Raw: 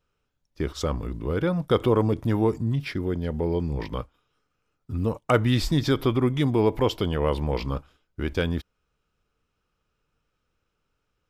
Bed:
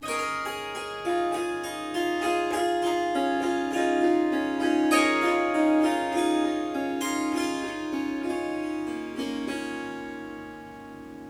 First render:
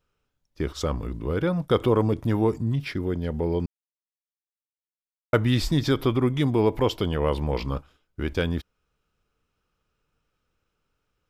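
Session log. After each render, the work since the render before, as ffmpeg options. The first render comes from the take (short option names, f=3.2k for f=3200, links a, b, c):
-filter_complex "[0:a]asplit=3[a][b][c];[a]atrim=end=3.66,asetpts=PTS-STARTPTS,afade=t=out:st=3.656:d=0.004:c=hsin[d];[b]atrim=start=3.66:end=5.33,asetpts=PTS-STARTPTS,volume=0[e];[c]atrim=start=5.33,asetpts=PTS-STARTPTS,afade=t=in:d=0.004:c=hsin[f];[d][e][f]concat=n=3:v=0:a=1"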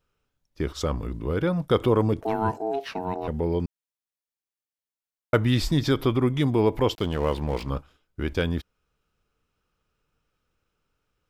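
-filter_complex "[0:a]asettb=1/sr,asplit=3[a][b][c];[a]atrim=end=2.214[d];[b]atrim=start=2.21:end=3.28,asetpts=PTS-STARTPTS,afade=t=in:d=0.004:c=qsin,afade=t=out:st=1.066:d=0.004:c=qsin,aeval=exprs='val(0)*sin(2*PI*550*n/s)':c=same[e];[c]atrim=start=3.276[f];[d][e]acrossfade=d=0.004:c1=hsin:c2=qsin[g];[g][f]acrossfade=d=0.004:c1=qsin:c2=hsin,asettb=1/sr,asplit=3[h][i][j];[h]atrim=end=6.954[k];[i]atrim=start=6.95:end=7.7,asetpts=PTS-STARTPTS,afade=t=in:d=0.004:c=qsin,afade=t=out:st=0.746:d=0.004:c=qsin,aeval=exprs='sgn(val(0))*max(abs(val(0))-0.0106,0)':c=same[l];[j]atrim=start=7.696[m];[k][l]acrossfade=d=0.004:c1=hsin:c2=qsin[n];[n][m]acrossfade=d=0.004:c1=qsin:c2=hsin"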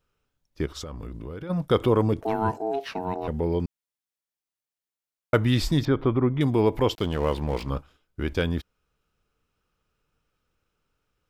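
-filter_complex "[0:a]asplit=3[a][b][c];[a]afade=t=out:st=0.65:d=0.02[d];[b]acompressor=threshold=-32dB:ratio=16:attack=3.2:release=140:knee=1:detection=peak,afade=t=in:st=0.65:d=0.02,afade=t=out:st=1.49:d=0.02[e];[c]afade=t=in:st=1.49:d=0.02[f];[d][e][f]amix=inputs=3:normalize=0,asettb=1/sr,asplit=3[g][h][i];[g]atrim=end=5.854[j];[h]atrim=start=5.85:end=6.41,asetpts=PTS-STARTPTS,afade=t=in:d=0.004:c=qsin,afade=t=out:st=0.556:d=0.004:c=qsin,lowpass=1.7k[k];[i]atrim=start=6.406[l];[j][k]acrossfade=d=0.004:c1=hsin:c2=qsin[m];[m][l]acrossfade=d=0.004:c1=qsin:c2=hsin"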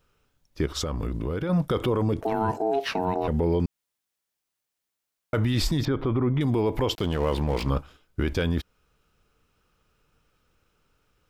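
-filter_complex "[0:a]asplit=2[a][b];[b]acompressor=threshold=-29dB:ratio=6,volume=3dB[c];[a][c]amix=inputs=2:normalize=0,alimiter=limit=-16dB:level=0:latency=1:release=17"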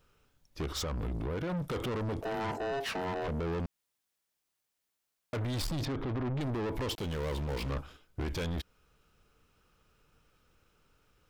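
-af "asoftclip=type=tanh:threshold=-31.5dB"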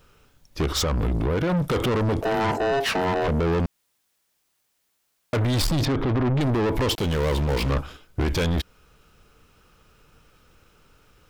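-af "volume=11.5dB"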